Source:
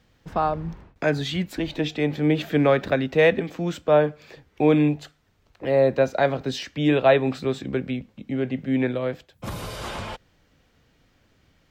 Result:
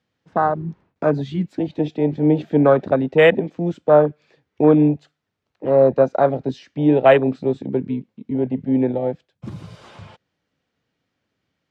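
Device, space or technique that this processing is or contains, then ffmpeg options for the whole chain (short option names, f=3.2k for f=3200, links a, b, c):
over-cleaned archive recording: -af "highpass=120,lowpass=6.9k,afwtdn=0.0631,volume=5dB"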